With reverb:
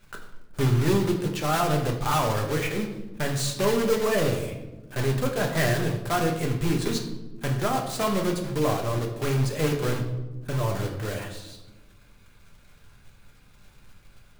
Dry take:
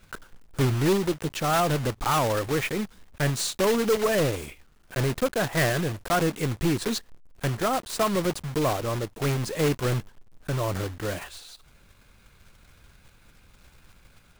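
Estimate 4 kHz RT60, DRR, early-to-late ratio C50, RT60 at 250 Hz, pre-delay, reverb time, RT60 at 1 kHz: 0.65 s, 1.5 dB, 7.5 dB, 1.7 s, 5 ms, 1.1 s, 0.90 s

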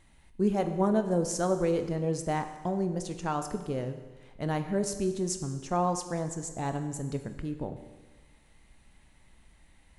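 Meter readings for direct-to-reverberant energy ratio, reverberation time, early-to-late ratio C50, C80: 7.5 dB, 1.3 s, 9.5 dB, 11.0 dB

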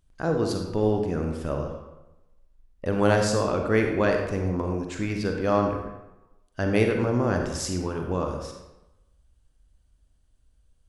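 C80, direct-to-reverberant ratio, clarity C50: 6.0 dB, 2.5 dB, 4.0 dB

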